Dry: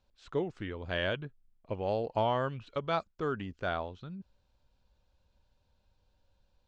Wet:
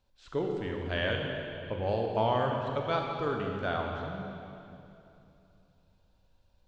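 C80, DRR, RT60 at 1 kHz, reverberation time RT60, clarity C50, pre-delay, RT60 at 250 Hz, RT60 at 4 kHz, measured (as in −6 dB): 2.5 dB, 0.5 dB, 2.7 s, 2.8 s, 1.5 dB, 24 ms, 3.2 s, 2.4 s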